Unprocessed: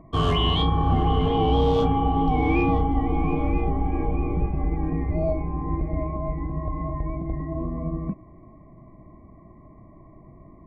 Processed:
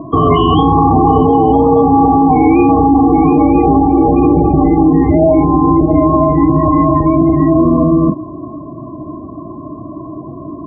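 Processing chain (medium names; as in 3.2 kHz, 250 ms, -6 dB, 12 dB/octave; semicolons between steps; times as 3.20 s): hard clipper -17 dBFS, distortion -17 dB; loudest bins only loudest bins 32; cabinet simulation 120–2100 Hz, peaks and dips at 190 Hz -7 dB, 300 Hz +9 dB, 920 Hz +6 dB; loudness maximiser +21.5 dB; trim -1 dB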